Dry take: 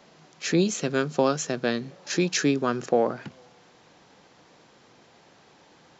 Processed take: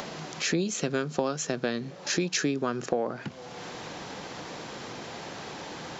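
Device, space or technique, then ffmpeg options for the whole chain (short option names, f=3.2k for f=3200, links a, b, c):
upward and downward compression: -af "acompressor=mode=upward:threshold=-28dB:ratio=2.5,acompressor=threshold=-26dB:ratio=5,volume=2dB"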